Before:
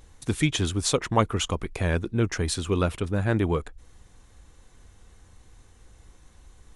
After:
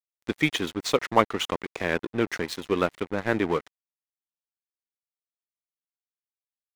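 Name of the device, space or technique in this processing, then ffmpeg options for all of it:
pocket radio on a weak battery: -af "highpass=250,lowpass=4.4k,aeval=exprs='sgn(val(0))*max(abs(val(0))-0.0126,0)':c=same,equalizer=f=2k:t=o:w=0.31:g=4.5,volume=3.5dB"

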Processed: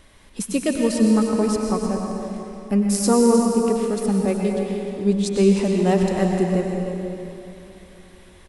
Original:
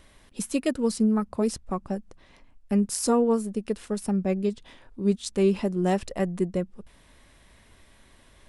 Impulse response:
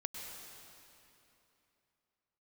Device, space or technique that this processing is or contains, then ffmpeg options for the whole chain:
cave: -filter_complex "[0:a]aecho=1:1:310:0.266[a];[1:a]atrim=start_sample=2205[b];[a][b]afir=irnorm=-1:irlink=0,volume=6.5dB"

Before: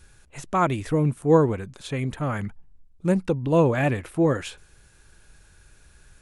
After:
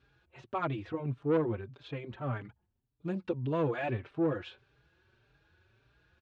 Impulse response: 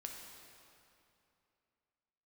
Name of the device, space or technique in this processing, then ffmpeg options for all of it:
barber-pole flanger into a guitar amplifier: -filter_complex "[0:a]asettb=1/sr,asplit=3[a][b][c];[a]atrim=end=2.444[d];[b]atrim=start=2.44:end=3.9,asetpts=PTS-STARTPTS,afade=t=in:d=0.004:c=qsin,afade=t=out:st=1.456:d=0.004:c=qsin,aemphasis=mode=production:type=50fm[e];[c]atrim=start=3.896[f];[d][e]acrossfade=d=0.004:c1=hsin:c2=qsin[g];[g][f]acrossfade=d=0.004:c1=qsin:c2=hsin,asplit=2[h][i];[i]adelay=4.6,afreqshift=1.7[j];[h][j]amix=inputs=2:normalize=1,asoftclip=type=tanh:threshold=-16.5dB,highpass=92,equalizer=f=120:t=q:w=4:g=6,equalizer=f=180:t=q:w=4:g=-7,equalizer=f=360:t=q:w=4:g=4,equalizer=f=2k:t=q:w=4:g=-4,lowpass=f=3.8k:w=0.5412,lowpass=f=3.8k:w=1.3066,volume=-6dB"

